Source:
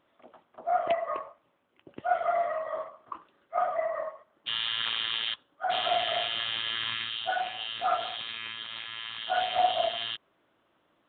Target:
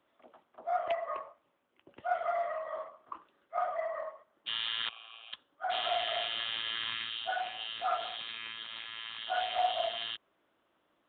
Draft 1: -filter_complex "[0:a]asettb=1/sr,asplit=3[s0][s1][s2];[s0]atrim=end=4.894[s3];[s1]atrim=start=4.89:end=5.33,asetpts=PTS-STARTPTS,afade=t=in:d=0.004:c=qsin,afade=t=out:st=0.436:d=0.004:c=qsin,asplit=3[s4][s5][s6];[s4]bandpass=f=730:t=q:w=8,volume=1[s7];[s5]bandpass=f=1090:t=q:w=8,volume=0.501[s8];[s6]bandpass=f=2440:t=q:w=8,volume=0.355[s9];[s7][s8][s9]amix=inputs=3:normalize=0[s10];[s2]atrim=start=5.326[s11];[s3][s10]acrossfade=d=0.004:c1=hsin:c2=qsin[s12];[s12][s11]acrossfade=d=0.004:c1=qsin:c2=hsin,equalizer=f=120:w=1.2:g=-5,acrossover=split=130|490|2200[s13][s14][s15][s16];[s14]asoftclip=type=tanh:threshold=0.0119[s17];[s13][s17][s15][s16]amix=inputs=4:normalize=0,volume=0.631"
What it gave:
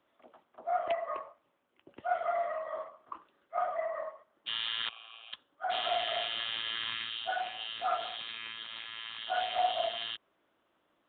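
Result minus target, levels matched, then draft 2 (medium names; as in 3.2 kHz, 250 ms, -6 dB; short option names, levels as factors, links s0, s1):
saturation: distortion -7 dB
-filter_complex "[0:a]asettb=1/sr,asplit=3[s0][s1][s2];[s0]atrim=end=4.894[s3];[s1]atrim=start=4.89:end=5.33,asetpts=PTS-STARTPTS,afade=t=in:d=0.004:c=qsin,afade=t=out:st=0.436:d=0.004:c=qsin,asplit=3[s4][s5][s6];[s4]bandpass=f=730:t=q:w=8,volume=1[s7];[s5]bandpass=f=1090:t=q:w=8,volume=0.501[s8];[s6]bandpass=f=2440:t=q:w=8,volume=0.355[s9];[s7][s8][s9]amix=inputs=3:normalize=0[s10];[s2]atrim=start=5.326[s11];[s3][s10]acrossfade=d=0.004:c1=hsin:c2=qsin[s12];[s12][s11]acrossfade=d=0.004:c1=qsin:c2=hsin,equalizer=f=120:w=1.2:g=-5,acrossover=split=130|490|2200[s13][s14][s15][s16];[s14]asoftclip=type=tanh:threshold=0.00447[s17];[s13][s17][s15][s16]amix=inputs=4:normalize=0,volume=0.631"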